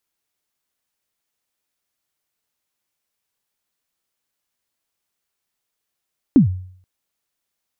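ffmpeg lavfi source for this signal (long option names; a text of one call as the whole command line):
ffmpeg -f lavfi -i "aevalsrc='0.596*pow(10,-3*t/0.58)*sin(2*PI*(310*0.117/log(92/310)*(exp(log(92/310)*min(t,0.117)/0.117)-1)+92*max(t-0.117,0)))':duration=0.48:sample_rate=44100" out.wav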